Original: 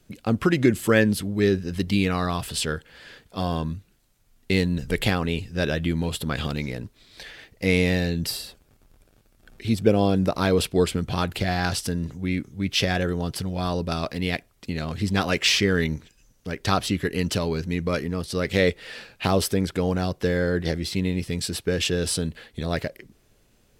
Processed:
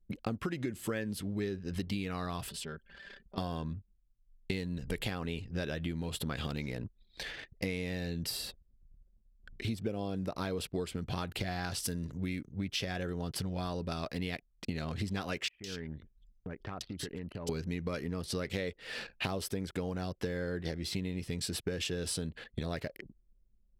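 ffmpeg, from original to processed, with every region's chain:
-filter_complex "[0:a]asettb=1/sr,asplit=3[s0][s1][s2];[s0]atrim=end=2.494[s3];[s1]atrim=start=2.49:end=3.38,asetpts=PTS-STARTPTS,afade=t=in:d=0.004:c=qsin,afade=t=out:st=0.886:d=0.004:c=qsin,highshelf=f=9100:g=2,aecho=1:1:5.1:0.75,atrim=end_sample=39249,acompressor=threshold=0.00631:ratio=3:attack=3.2:release=140:knee=1:detection=peak[s4];[s2]atrim=start=3.376[s5];[s3][s4]acrossfade=d=0.004:c1=hsin:c2=qsin[s6];[s6][s5]acrossfade=d=0.004:c1=qsin:c2=hsin,asettb=1/sr,asplit=3[s7][s8][s9];[s7]atrim=end=11.804[s10];[s8]atrim=start=11.8:end=12.57,asetpts=PTS-STARTPTS,afade=t=in:d=0.004:c=qsin,afade=t=out:st=0.766:d=0.004:c=qsin,aemphasis=mode=production:type=cd,bandreject=f=780:w=9.1[s11];[s9]atrim=start=12.566[s12];[s10][s11]acrossfade=d=0.004:c1=hsin:c2=qsin[s13];[s13][s12]acrossfade=d=0.004:c1=qsin:c2=hsin,asettb=1/sr,asplit=3[s14][s15][s16];[s14]atrim=end=15.484[s17];[s15]atrim=start=15.48:end=17.49,asetpts=PTS-STARTPTS,afade=t=in:d=0.004:c=qsin,afade=t=out:st=2.006:d=0.004:c=qsin,acompressor=threshold=0.0158:ratio=12:attack=3.2:release=140:knee=1:detection=peak,acrossover=split=2500[s18][s19];[s19]adelay=160[s20];[s18][s20]amix=inputs=2:normalize=0,atrim=end_sample=88641[s21];[s16]atrim=start=17.486[s22];[s17][s21]acrossfade=d=0.004:c1=hsin:c2=qsin[s23];[s23][s22]acrossfade=d=0.004:c1=qsin:c2=hsin,anlmdn=0.0398,acompressor=threshold=0.0251:ratio=12"

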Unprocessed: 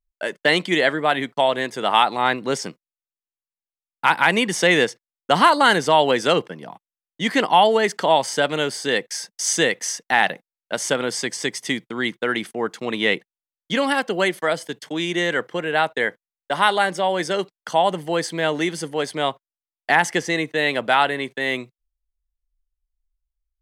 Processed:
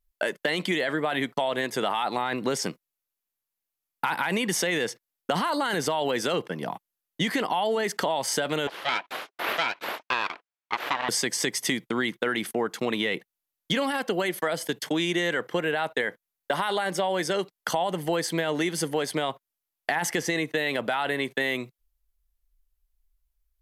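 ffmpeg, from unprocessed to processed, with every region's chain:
-filter_complex "[0:a]asettb=1/sr,asplit=3[s0][s1][s2];[s0]atrim=end=8.674[s3];[s1]atrim=start=8.67:end=11.09,asetpts=PTS-STARTPTS,afade=t=in:d=0.004:c=qsin,afade=t=out:st=2.416:d=0.004:c=qsin,aeval=exprs='abs(val(0))':c=same,highpass=500,lowpass=3000[s4];[s2]atrim=start=11.086[s5];[s3][s4]acrossfade=d=0.004:c1=hsin:c2=qsin[s6];[s6][s5]acrossfade=d=0.004:c1=qsin:c2=hsin,equalizer=f=12000:t=o:w=0.22:g=13,alimiter=limit=0.224:level=0:latency=1:release=13,acompressor=threshold=0.0355:ratio=5,volume=1.88"

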